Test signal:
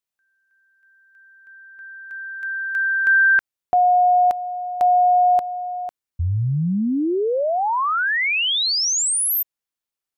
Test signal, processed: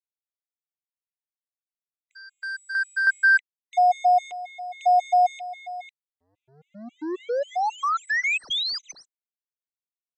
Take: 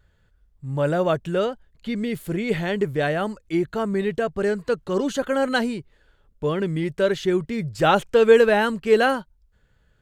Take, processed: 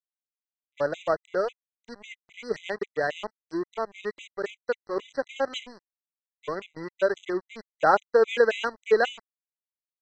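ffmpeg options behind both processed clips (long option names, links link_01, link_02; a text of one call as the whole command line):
ffmpeg -i in.wav -filter_complex "[0:a]acrossover=split=330 4500:gain=0.158 1 0.224[link_01][link_02][link_03];[link_01][link_02][link_03]amix=inputs=3:normalize=0,aresample=16000,aeval=exprs='sgn(val(0))*max(abs(val(0))-0.0211,0)':channel_layout=same,aresample=44100,afftfilt=real='re*gt(sin(2*PI*3.7*pts/sr)*(1-2*mod(floor(b*sr/1024/2000),2)),0)':imag='im*gt(sin(2*PI*3.7*pts/sr)*(1-2*mod(floor(b*sr/1024/2000),2)),0)':win_size=1024:overlap=0.75" out.wav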